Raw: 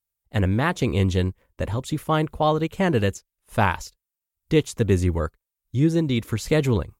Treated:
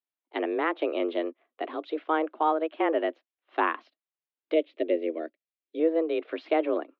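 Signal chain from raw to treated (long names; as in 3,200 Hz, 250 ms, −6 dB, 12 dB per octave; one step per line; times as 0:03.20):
single-sideband voice off tune +160 Hz 150–3,400 Hz
0:04.54–0:05.80: flat-topped bell 1,100 Hz −14 dB 1.3 octaves
treble cut that deepens with the level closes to 2,200 Hz, closed at −18.5 dBFS
level −4 dB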